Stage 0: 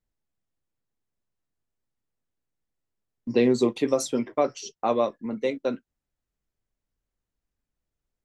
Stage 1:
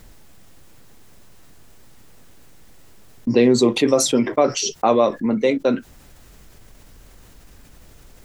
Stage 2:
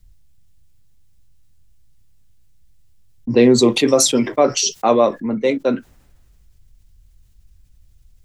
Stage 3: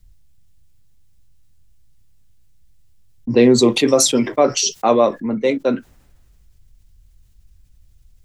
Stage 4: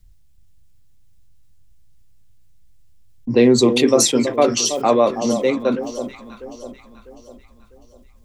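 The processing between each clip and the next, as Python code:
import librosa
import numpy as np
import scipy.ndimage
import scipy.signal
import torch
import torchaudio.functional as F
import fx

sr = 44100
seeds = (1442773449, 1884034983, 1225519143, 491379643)

y1 = fx.env_flatten(x, sr, amount_pct=50)
y1 = F.gain(torch.from_numpy(y1), 5.0).numpy()
y2 = fx.band_widen(y1, sr, depth_pct=70)
y2 = F.gain(torch.from_numpy(y2), -1.0).numpy()
y3 = y2
y4 = fx.echo_alternate(y3, sr, ms=325, hz=1000.0, feedback_pct=63, wet_db=-9)
y4 = F.gain(torch.from_numpy(y4), -1.0).numpy()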